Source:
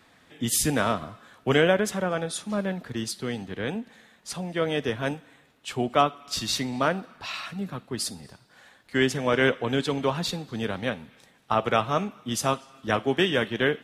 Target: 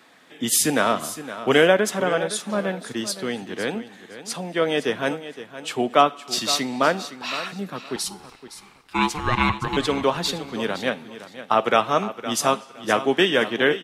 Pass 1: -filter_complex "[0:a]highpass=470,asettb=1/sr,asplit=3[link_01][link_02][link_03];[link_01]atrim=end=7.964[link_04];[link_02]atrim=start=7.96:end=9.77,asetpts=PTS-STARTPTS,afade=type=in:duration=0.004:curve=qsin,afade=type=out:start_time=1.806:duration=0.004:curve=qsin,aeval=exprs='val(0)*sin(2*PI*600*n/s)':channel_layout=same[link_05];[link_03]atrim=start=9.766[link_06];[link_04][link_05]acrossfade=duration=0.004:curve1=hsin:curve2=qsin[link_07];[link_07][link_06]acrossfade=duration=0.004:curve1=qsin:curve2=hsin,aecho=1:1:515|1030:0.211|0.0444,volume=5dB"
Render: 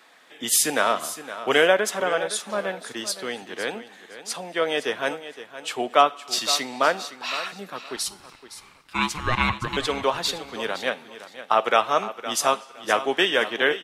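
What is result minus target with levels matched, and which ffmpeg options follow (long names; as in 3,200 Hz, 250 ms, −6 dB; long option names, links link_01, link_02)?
250 Hz band −6.0 dB
-filter_complex "[0:a]highpass=230,asettb=1/sr,asplit=3[link_01][link_02][link_03];[link_01]atrim=end=7.964[link_04];[link_02]atrim=start=7.96:end=9.77,asetpts=PTS-STARTPTS,afade=type=in:duration=0.004:curve=qsin,afade=type=out:start_time=1.806:duration=0.004:curve=qsin,aeval=exprs='val(0)*sin(2*PI*600*n/s)':channel_layout=same[link_05];[link_03]atrim=start=9.766[link_06];[link_04][link_05]acrossfade=duration=0.004:curve1=hsin:curve2=qsin[link_07];[link_07][link_06]acrossfade=duration=0.004:curve1=qsin:curve2=hsin,aecho=1:1:515|1030:0.211|0.0444,volume=5dB"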